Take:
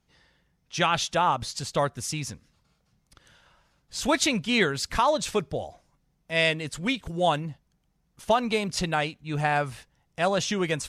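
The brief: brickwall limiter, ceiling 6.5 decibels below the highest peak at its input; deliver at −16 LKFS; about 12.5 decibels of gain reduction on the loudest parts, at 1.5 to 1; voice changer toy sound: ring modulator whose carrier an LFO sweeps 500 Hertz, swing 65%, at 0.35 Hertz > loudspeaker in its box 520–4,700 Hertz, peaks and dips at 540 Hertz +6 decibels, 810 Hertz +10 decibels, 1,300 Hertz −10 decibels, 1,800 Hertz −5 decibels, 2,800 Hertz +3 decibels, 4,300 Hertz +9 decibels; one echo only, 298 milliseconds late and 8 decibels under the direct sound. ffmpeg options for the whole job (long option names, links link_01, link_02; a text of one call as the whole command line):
ffmpeg -i in.wav -af "acompressor=threshold=-54dB:ratio=1.5,alimiter=level_in=5dB:limit=-24dB:level=0:latency=1,volume=-5dB,aecho=1:1:298:0.398,aeval=exprs='val(0)*sin(2*PI*500*n/s+500*0.65/0.35*sin(2*PI*0.35*n/s))':channel_layout=same,highpass=520,equalizer=frequency=540:width_type=q:width=4:gain=6,equalizer=frequency=810:width_type=q:width=4:gain=10,equalizer=frequency=1300:width_type=q:width=4:gain=-10,equalizer=frequency=1800:width_type=q:width=4:gain=-5,equalizer=frequency=2800:width_type=q:width=4:gain=3,equalizer=frequency=4300:width_type=q:width=4:gain=9,lowpass=frequency=4700:width=0.5412,lowpass=frequency=4700:width=1.3066,volume=26dB" out.wav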